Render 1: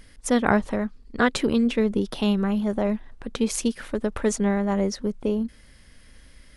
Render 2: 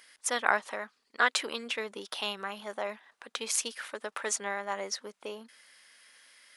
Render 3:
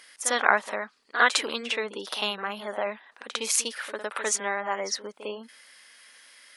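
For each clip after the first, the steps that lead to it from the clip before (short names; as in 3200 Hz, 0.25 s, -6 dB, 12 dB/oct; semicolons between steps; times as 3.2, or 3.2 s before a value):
HPF 950 Hz 12 dB/oct
spectral gate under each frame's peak -30 dB strong; reverse echo 53 ms -10.5 dB; gain +5 dB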